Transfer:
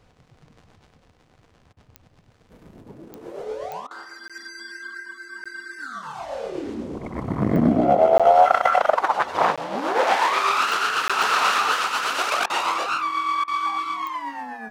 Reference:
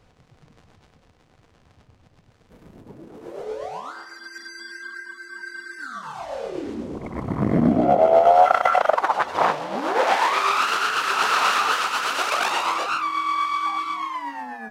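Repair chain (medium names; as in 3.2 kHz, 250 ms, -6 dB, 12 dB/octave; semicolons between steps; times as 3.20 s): de-click; interpolate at 4.28/5.44/8.18/9.56/11.08 s, 16 ms; interpolate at 1.73/3.87/12.46/13.44 s, 37 ms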